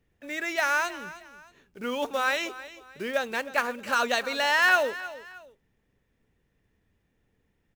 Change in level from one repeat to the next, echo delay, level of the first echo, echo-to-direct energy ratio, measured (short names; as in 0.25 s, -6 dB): -9.5 dB, 0.313 s, -16.0 dB, -15.5 dB